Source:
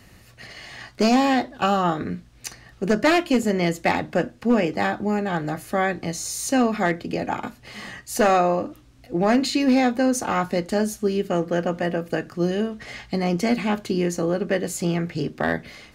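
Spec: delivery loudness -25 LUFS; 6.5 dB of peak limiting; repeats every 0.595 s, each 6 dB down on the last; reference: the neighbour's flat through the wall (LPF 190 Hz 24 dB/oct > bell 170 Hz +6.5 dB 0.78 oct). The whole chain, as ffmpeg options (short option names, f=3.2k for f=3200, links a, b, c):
-af "alimiter=limit=-18dB:level=0:latency=1,lowpass=f=190:w=0.5412,lowpass=f=190:w=1.3066,equalizer=f=170:t=o:w=0.78:g=6.5,aecho=1:1:595|1190|1785|2380|2975|3570:0.501|0.251|0.125|0.0626|0.0313|0.0157,volume=6dB"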